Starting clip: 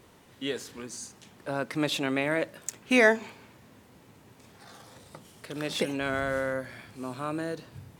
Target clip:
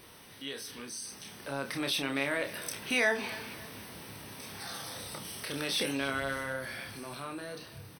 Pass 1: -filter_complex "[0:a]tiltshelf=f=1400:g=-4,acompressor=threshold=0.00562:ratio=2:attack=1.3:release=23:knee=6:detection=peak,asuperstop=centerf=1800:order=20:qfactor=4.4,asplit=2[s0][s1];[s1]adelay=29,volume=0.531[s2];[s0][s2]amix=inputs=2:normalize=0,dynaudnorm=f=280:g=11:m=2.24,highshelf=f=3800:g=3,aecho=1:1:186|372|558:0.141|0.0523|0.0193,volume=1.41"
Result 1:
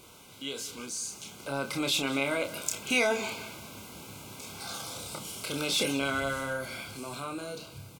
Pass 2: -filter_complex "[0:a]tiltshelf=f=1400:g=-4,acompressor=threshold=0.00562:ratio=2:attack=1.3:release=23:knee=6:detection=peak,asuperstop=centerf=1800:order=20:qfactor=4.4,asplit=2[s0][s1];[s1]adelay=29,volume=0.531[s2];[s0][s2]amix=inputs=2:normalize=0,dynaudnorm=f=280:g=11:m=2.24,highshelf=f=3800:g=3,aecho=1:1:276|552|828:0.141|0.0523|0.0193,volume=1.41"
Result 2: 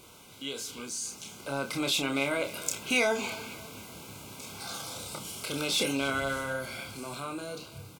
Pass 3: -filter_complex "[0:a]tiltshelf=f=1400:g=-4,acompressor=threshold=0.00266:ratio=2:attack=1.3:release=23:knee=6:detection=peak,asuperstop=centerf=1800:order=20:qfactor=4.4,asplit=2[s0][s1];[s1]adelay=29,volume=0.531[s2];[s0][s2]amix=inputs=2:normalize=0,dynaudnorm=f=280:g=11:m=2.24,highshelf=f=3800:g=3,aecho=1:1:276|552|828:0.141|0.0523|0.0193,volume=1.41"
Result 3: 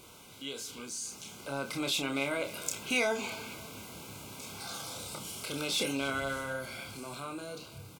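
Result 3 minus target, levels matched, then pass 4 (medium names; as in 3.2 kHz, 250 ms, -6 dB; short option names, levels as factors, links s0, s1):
8 kHz band +3.5 dB
-filter_complex "[0:a]tiltshelf=f=1400:g=-4,acompressor=threshold=0.00266:ratio=2:attack=1.3:release=23:knee=6:detection=peak,asuperstop=centerf=7100:order=20:qfactor=4.4,asplit=2[s0][s1];[s1]adelay=29,volume=0.531[s2];[s0][s2]amix=inputs=2:normalize=0,dynaudnorm=f=280:g=11:m=2.24,highshelf=f=3800:g=3,aecho=1:1:276|552|828:0.141|0.0523|0.0193,volume=1.41"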